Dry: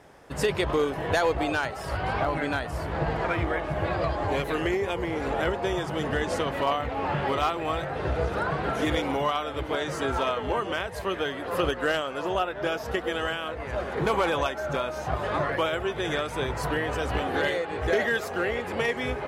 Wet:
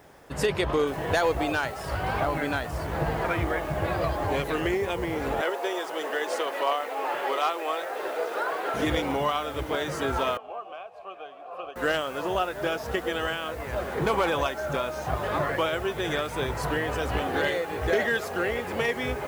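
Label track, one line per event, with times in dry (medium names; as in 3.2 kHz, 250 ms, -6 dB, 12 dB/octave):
0.870000	0.870000	noise floor step -68 dB -53 dB
5.410000	8.740000	high-pass 370 Hz 24 dB/octave
10.370000	11.760000	vowel filter a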